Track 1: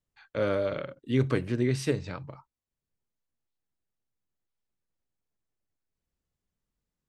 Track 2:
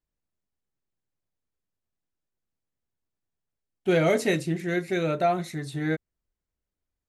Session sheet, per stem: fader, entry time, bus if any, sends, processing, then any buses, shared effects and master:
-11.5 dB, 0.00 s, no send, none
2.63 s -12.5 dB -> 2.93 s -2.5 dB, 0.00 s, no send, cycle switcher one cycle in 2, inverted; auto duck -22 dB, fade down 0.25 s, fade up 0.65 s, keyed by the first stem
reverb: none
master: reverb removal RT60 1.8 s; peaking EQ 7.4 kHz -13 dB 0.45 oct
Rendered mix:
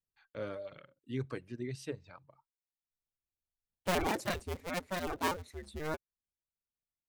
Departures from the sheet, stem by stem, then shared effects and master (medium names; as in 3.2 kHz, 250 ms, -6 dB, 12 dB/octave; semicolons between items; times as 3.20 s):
stem 2 -12.5 dB -> -19.0 dB; master: missing peaking EQ 7.4 kHz -13 dB 0.45 oct